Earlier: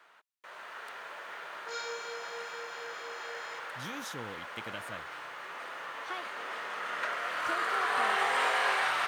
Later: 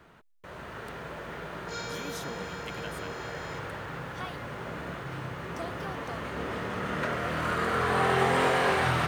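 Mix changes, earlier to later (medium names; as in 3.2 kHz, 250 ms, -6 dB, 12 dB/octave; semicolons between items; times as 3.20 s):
speech: entry -1.90 s; first sound: remove high-pass 880 Hz 12 dB/octave; master: add treble shelf 9.7 kHz +5.5 dB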